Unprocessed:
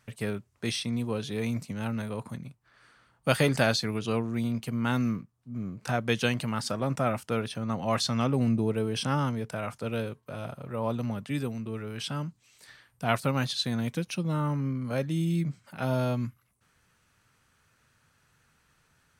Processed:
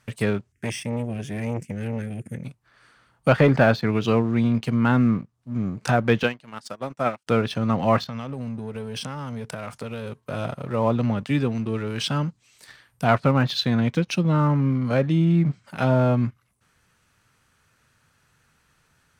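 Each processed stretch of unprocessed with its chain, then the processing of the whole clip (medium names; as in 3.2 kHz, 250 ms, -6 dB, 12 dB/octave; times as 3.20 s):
0.52–2.44 s: Chebyshev band-stop 410–1700 Hz, order 3 + static phaser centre 1.7 kHz, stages 4 + transformer saturation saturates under 530 Hz
6.23–7.27 s: high-pass 260 Hz 6 dB/octave + upward expansion 2.5:1, over -46 dBFS
8.04–10.19 s: compression 8:1, threshold -36 dBFS + band-stop 330 Hz, Q 6.1
whole clip: low-pass that closes with the level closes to 1.9 kHz, closed at -23 dBFS; waveshaping leveller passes 1; trim +5 dB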